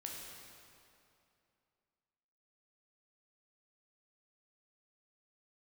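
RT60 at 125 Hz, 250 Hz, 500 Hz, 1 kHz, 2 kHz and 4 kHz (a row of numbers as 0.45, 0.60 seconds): 2.7, 2.7, 2.7, 2.6, 2.3, 2.1 seconds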